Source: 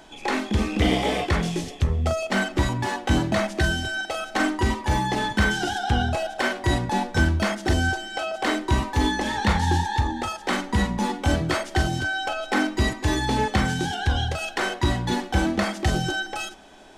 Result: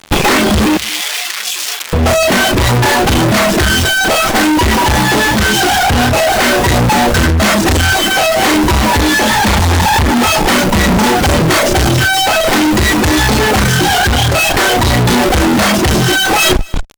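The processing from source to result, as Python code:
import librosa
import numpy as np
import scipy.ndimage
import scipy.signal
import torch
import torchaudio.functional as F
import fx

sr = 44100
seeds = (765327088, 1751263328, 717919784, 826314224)

p1 = fx.schmitt(x, sr, flips_db=-38.0)
p2 = x + F.gain(torch.from_numpy(p1), -5.5).numpy()
p3 = fx.doubler(p2, sr, ms=33.0, db=-2.5)
p4 = fx.dereverb_blind(p3, sr, rt60_s=0.67)
p5 = fx.fuzz(p4, sr, gain_db=37.0, gate_db=-41.0)
p6 = fx.rider(p5, sr, range_db=10, speed_s=0.5)
p7 = fx.bessel_highpass(p6, sr, hz=2600.0, order=2, at=(0.77, 1.93))
p8 = p7 + fx.echo_single(p7, sr, ms=236, db=-24.0, dry=0)
y = F.gain(torch.from_numpy(p8), 4.0).numpy()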